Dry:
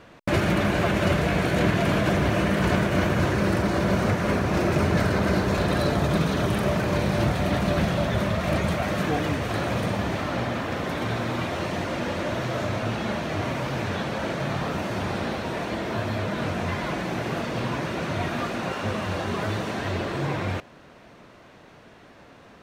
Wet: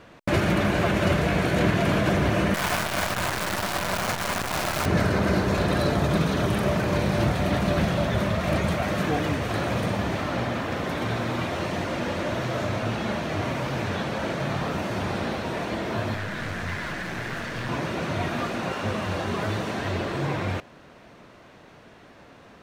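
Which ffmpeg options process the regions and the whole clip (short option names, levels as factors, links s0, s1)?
-filter_complex "[0:a]asettb=1/sr,asplit=3[s0][s1][s2];[s0]atrim=end=2.544[s3];[s1]atrim=start=2.54:end=4.86,asetpts=PTS-STARTPTS,afade=t=in:d=0.004:c=qsin,afade=t=out:st=2.316:d=0.004:c=qsin,lowshelf=f=590:t=q:w=1.5:g=-8,bandreject=f=50:t=h:w=6,bandreject=f=100:t=h:w=6,bandreject=f=150:t=h:w=6,bandreject=f=200:t=h:w=6,bandreject=f=250:t=h:w=6,bandreject=f=300:t=h:w=6,bandreject=f=350:t=h:w=6,bandreject=f=400:t=h:w=6,acrusher=bits=5:dc=4:mix=0:aa=0.000001[s4];[s2]atrim=start=4.856[s5];[s3][s4]acrossfade=d=0.004:c1=hsin:c2=qsin[s6];[s6][s5]acrossfade=d=0.004:c1=qsin:c2=hsin,asettb=1/sr,asplit=3[s7][s8][s9];[s7]atrim=end=16.144[s10];[s8]atrim=start=16.14:end=17.69,asetpts=PTS-STARTPTS,afade=t=in:d=0.004:c=qsin,afade=t=out:st=1.546:d=0.004:c=qsin,aeval=exprs='clip(val(0),-1,0.0266)':c=same,equalizer=f=1700:t=o:w=0.71:g=10.5,acrossover=split=150|3000[s11][s12][s13];[s12]acompressor=threshold=0.02:ratio=2:attack=3.2:release=140:knee=2.83:detection=peak[s14];[s11][s14][s13]amix=inputs=3:normalize=0[s15];[s9]atrim=start=17.686[s16];[s10][s15]acrossfade=d=0.004:c1=hsin:c2=qsin[s17];[s17][s16]acrossfade=d=0.004:c1=qsin:c2=hsin"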